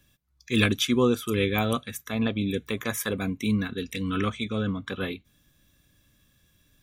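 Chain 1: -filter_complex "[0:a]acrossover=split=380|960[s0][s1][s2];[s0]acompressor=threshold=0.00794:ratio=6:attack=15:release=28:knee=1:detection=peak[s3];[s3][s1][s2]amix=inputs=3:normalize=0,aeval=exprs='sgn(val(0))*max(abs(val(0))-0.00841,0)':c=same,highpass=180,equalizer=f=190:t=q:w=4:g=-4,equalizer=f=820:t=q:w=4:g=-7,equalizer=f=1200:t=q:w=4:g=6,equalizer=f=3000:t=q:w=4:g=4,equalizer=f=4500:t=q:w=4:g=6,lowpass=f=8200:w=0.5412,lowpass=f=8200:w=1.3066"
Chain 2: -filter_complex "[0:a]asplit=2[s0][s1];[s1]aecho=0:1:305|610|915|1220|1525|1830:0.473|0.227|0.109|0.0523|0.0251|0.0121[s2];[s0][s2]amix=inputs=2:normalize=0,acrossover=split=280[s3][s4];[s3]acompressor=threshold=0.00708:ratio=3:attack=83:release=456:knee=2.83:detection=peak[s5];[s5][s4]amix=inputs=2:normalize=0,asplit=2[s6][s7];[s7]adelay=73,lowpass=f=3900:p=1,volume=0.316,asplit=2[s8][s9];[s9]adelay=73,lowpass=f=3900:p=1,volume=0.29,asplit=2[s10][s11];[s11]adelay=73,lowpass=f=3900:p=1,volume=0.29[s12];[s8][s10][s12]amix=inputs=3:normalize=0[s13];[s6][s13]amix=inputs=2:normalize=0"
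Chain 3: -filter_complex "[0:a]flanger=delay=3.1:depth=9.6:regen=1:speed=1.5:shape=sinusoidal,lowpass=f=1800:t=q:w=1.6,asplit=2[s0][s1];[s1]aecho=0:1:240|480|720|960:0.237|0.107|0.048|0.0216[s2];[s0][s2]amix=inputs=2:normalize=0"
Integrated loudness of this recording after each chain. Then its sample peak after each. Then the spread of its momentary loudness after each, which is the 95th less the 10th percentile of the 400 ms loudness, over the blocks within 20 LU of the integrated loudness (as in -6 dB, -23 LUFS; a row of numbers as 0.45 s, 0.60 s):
-31.0 LUFS, -28.5 LUFS, -29.5 LUFS; -7.5 dBFS, -9.0 dBFS, -12.0 dBFS; 12 LU, 13 LU, 9 LU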